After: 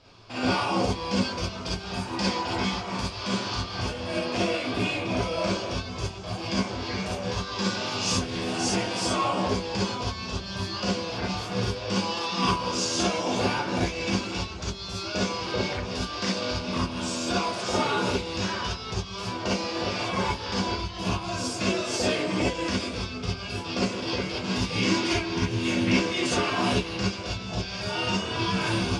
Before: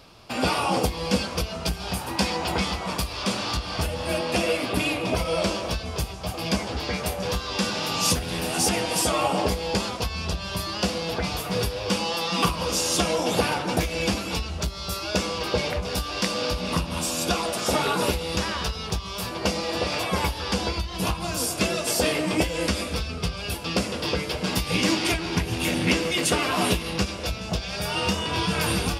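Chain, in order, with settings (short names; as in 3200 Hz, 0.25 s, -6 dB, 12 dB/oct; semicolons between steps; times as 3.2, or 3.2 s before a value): LPF 7000 Hz 24 dB/oct; non-linear reverb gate 80 ms rising, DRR -5.5 dB; gain -8.5 dB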